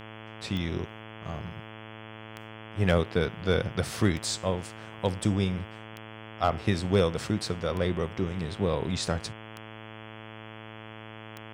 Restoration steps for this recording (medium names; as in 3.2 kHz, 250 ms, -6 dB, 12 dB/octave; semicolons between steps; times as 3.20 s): clip repair -12.5 dBFS; de-click; de-hum 109.7 Hz, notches 31